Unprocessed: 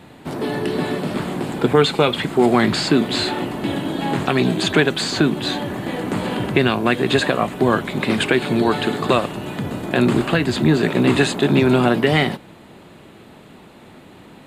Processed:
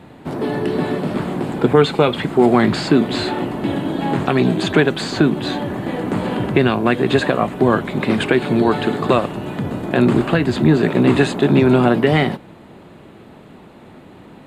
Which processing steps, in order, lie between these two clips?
high shelf 2300 Hz -8.5 dB; gain +2.5 dB

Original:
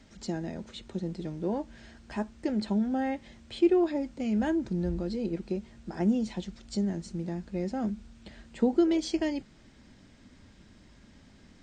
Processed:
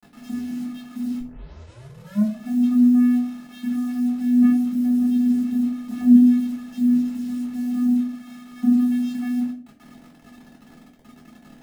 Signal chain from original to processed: 4.84–6.37 comb 5.5 ms, depth 85%; vocoder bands 8, square 246 Hz; bit-crush 9-bit; 1.19 tape start 1.18 s; reverb RT60 0.50 s, pre-delay 3 ms, DRR -3 dB

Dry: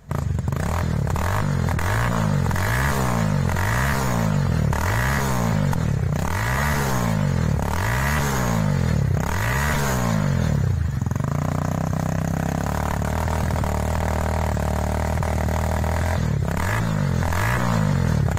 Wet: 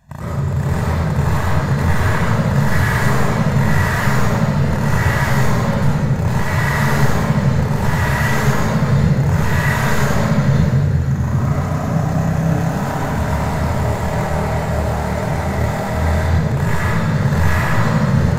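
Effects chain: low shelf 130 Hz -6 dB; reverb RT60 1.7 s, pre-delay 90 ms, DRR -9.5 dB; gain -8 dB

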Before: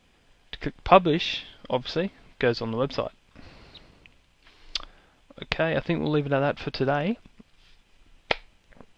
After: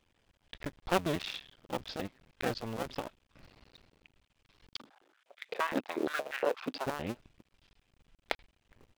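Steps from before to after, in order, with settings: cycle switcher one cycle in 2, muted; 4.78–6.86 stepped high-pass 8.5 Hz 260–2000 Hz; gain -8 dB

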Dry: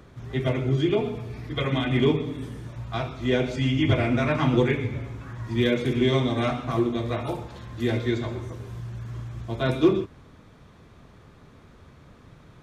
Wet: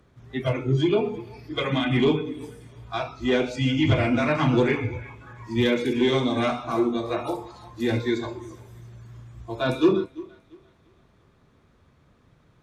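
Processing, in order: added harmonics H 5 -22 dB, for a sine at -8.5 dBFS; thinning echo 0.343 s, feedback 47%, high-pass 270 Hz, level -14 dB; spectral noise reduction 12 dB

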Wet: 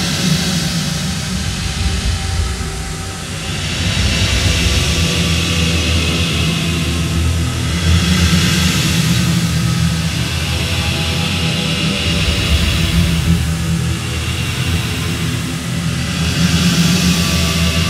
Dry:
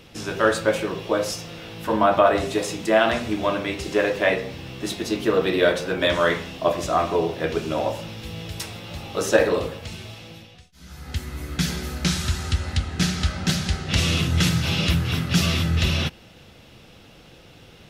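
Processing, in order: band noise 1000–9800 Hz -37 dBFS; Paulstretch 8.9×, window 0.25 s, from 13.48; hard clip -10 dBFS, distortion -33 dB; gain +6 dB

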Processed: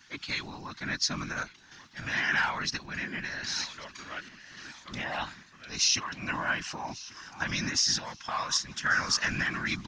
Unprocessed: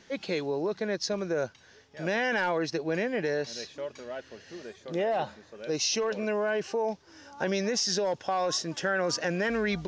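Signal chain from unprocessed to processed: EQ curve 260 Hz 0 dB, 400 Hz -26 dB, 1100 Hz +7 dB; whisperiser; feedback echo 1.141 s, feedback 39%, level -19.5 dB; random-step tremolo

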